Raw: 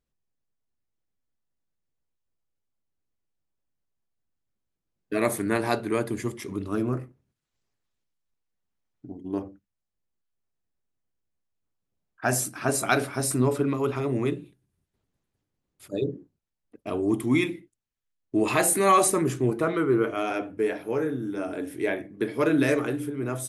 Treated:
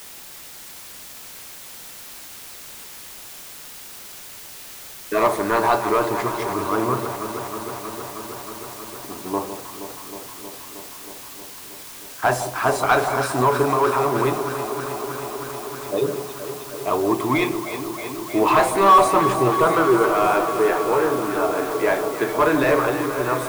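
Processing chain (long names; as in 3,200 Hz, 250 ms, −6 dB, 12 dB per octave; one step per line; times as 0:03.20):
graphic EQ with 15 bands 250 Hz −7 dB, 1,000 Hz +11 dB, 4,000 Hz +6 dB
mid-hump overdrive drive 14 dB, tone 1,000 Hz, clips at −10.5 dBFS
in parallel at −4 dB: bit-depth reduction 6 bits, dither triangular
on the sum: delay that swaps between a low-pass and a high-pass 158 ms, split 1,000 Hz, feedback 90%, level −9 dB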